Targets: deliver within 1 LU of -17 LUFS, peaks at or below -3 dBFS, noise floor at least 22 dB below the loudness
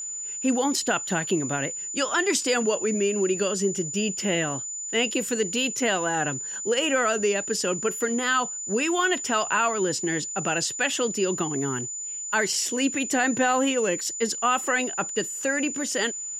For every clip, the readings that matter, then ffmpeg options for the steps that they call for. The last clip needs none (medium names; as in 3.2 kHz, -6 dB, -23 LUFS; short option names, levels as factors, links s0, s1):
steady tone 7 kHz; tone level -31 dBFS; loudness -24.5 LUFS; peak level -10.5 dBFS; loudness target -17.0 LUFS
-> -af "bandreject=f=7000:w=30"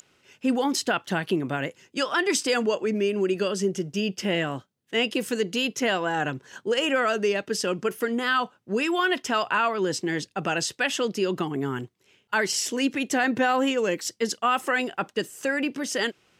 steady tone not found; loudness -26.0 LUFS; peak level -11.0 dBFS; loudness target -17.0 LUFS
-> -af "volume=2.82,alimiter=limit=0.708:level=0:latency=1"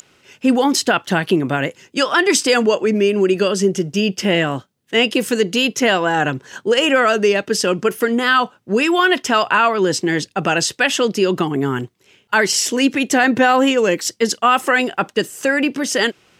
loudness -17.0 LUFS; peak level -3.0 dBFS; noise floor -57 dBFS